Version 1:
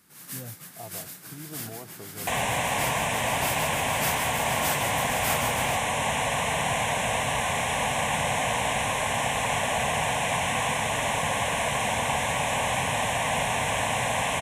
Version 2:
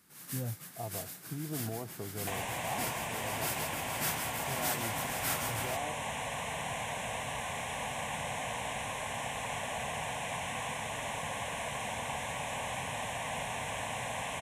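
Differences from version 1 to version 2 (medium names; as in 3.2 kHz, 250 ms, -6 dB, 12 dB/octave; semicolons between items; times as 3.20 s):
speech: add tilt EQ -1.5 dB/octave; first sound -4.0 dB; second sound -11.0 dB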